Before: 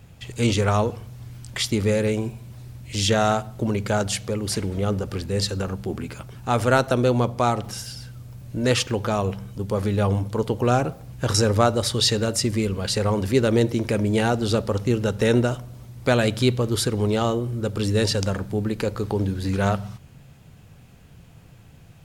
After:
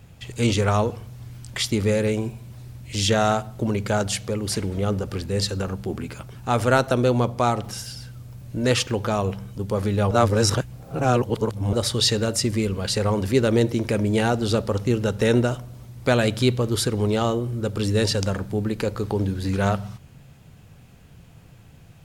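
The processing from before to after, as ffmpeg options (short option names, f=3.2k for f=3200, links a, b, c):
-filter_complex "[0:a]asplit=3[a][b][c];[a]atrim=end=10.112[d];[b]atrim=start=10.108:end=11.732,asetpts=PTS-STARTPTS,areverse[e];[c]atrim=start=11.728[f];[d][e]acrossfade=d=0.004:c1=hsin:c2=hsin[g];[g][f]acrossfade=d=0.004:c1=hsin:c2=hsin"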